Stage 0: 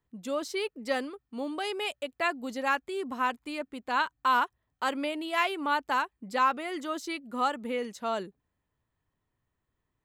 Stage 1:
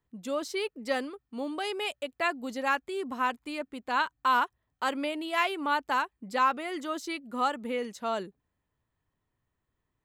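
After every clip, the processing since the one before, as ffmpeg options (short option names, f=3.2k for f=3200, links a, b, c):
-af anull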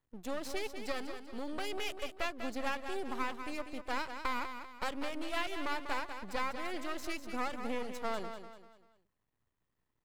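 -filter_complex "[0:a]acompressor=threshold=-29dB:ratio=6,aeval=exprs='max(val(0),0)':c=same,asplit=2[a][b];[b]aecho=0:1:195|390|585|780:0.376|0.147|0.0572|0.0223[c];[a][c]amix=inputs=2:normalize=0"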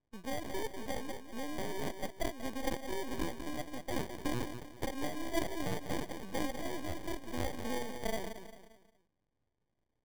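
-af "acrusher=samples=33:mix=1:aa=0.000001"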